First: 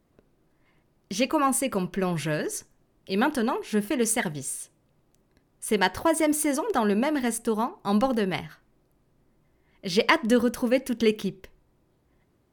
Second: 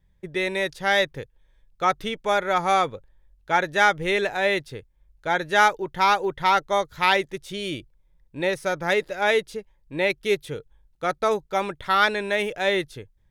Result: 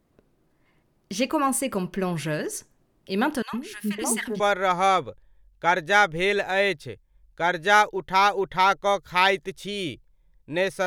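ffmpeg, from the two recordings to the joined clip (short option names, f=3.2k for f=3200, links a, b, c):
-filter_complex "[0:a]asettb=1/sr,asplit=3[a][b][c];[a]atrim=end=3.424[d];[b]atrim=start=3.42:end=4.4,asetpts=PTS-STARTPTS,afade=t=in:d=0.004:c=qsin,afade=t=out:st=0.976:d=0.004:c=qsin,acrossover=split=320|1100[e][f][g];[e]adelay=110[h];[f]adelay=560[i];[h][i][g]amix=inputs=3:normalize=0,atrim=end_sample=43218[j];[c]atrim=start=4.396[k];[d][j]acrossfade=d=0.004:c1=hsin:c2=qsin[l];[l][k]acrossfade=d=0.004:c1=qsin:c2=hsin,apad=whole_dur=10.86,atrim=end=10.86,atrim=end=4.402[m];[1:a]atrim=start=2.258:end=8.72[n];[m][n]acrossfade=d=0.004:c1=hsin:c2=hsin"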